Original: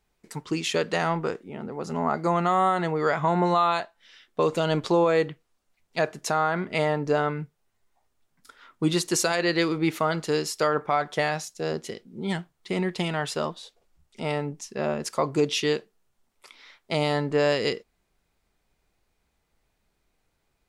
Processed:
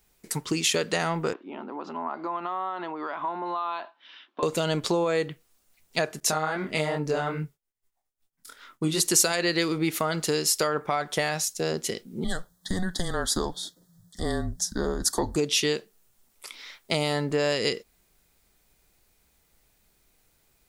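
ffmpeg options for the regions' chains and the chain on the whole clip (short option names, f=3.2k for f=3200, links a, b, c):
-filter_complex "[0:a]asettb=1/sr,asplit=3[a][b][c];[a]atrim=end=1.334[d];[b]atrim=start=1.33:end=4.43,asetpts=PTS-STARTPTS,afade=t=in:d=0.004:c=qsin,afade=t=out:st=3.096:d=0.004:c=qsin,acompressor=threshold=-34dB:ratio=4:attack=3.2:release=140:knee=1:detection=peak,highpass=f=270:w=0.5412,highpass=f=270:w=1.3066,equalizer=f=290:t=q:w=4:g=4,equalizer=f=460:t=q:w=4:g=-9,equalizer=f=1k:t=q:w=4:g=9,equalizer=f=2k:t=q:w=4:g=-7,lowpass=f=3.4k:w=0.5412,lowpass=f=3.4k:w=1.3066[e];[c]atrim=start=4.426[f];[d][e]acrossfade=d=0.004:c1=hsin:c2=qsin[g];[g][f]acrossfade=d=0.004:c1=qsin:c2=hsin,asettb=1/sr,asplit=3[h][i][j];[h]atrim=end=6.204[k];[i]atrim=start=6.2:end=9,asetpts=PTS-STARTPTS,afade=t=in:d=0.004:c=qsin,afade=t=out:st=2.796:d=0.004:c=qsin,agate=range=-33dB:threshold=-59dB:ratio=3:release=100:detection=peak,flanger=delay=20:depth=6:speed=2.4[l];[j]atrim=start=8.996[m];[k][l]acrossfade=d=0.004:c1=hsin:c2=qsin[n];[n][m]acrossfade=d=0.004:c1=qsin:c2=hsin,asettb=1/sr,asplit=3[o][p][q];[o]atrim=end=12.244[r];[p]atrim=start=12.24:end=15.36,asetpts=PTS-STARTPTS,afade=t=in:d=0.004:c=qsin,afade=t=out:st=3.116:d=0.004:c=qsin,afreqshift=-180,asuperstop=centerf=2500:order=8:qfactor=1.8[s];[q]atrim=start=15.356[t];[r][s]acrossfade=d=0.004:c1=hsin:c2=qsin[u];[u][t]acrossfade=d=0.004:c1=qsin:c2=hsin,equalizer=f=930:w=1.5:g=-2,acompressor=threshold=-30dB:ratio=2.5,aemphasis=mode=production:type=50kf,volume=4.5dB"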